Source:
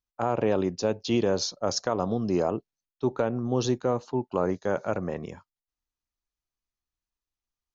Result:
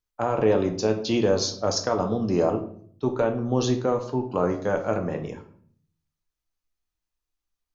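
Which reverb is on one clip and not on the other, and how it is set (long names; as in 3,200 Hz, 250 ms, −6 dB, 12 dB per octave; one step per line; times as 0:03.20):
rectangular room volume 67 cubic metres, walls mixed, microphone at 0.45 metres
level +1.5 dB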